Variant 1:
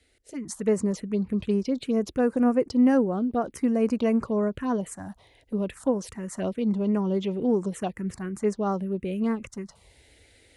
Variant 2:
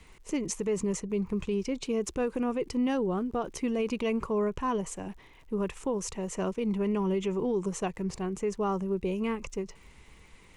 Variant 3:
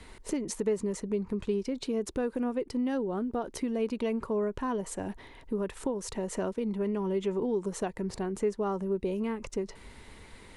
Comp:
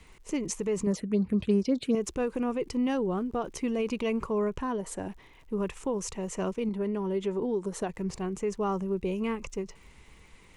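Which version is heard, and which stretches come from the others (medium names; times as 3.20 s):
2
0.87–1.95 s: from 1
4.61–5.08 s: from 3
6.69–7.89 s: from 3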